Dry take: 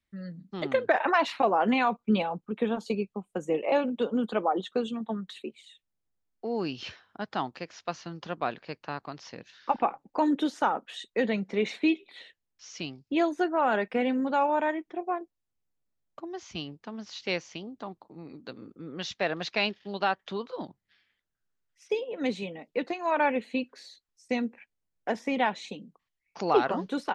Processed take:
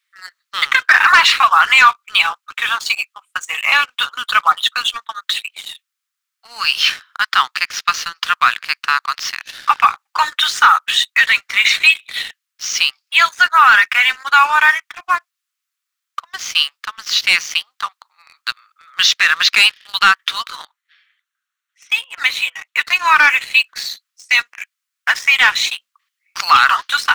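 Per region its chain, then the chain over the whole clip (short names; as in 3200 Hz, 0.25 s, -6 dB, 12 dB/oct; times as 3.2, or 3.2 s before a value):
20.6–22.84 high shelf 4100 Hz -7 dB + notch 4900 Hz, Q 7.9
whole clip: elliptic high-pass 1200 Hz, stop band 70 dB; sample leveller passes 2; maximiser +20 dB; gain -1 dB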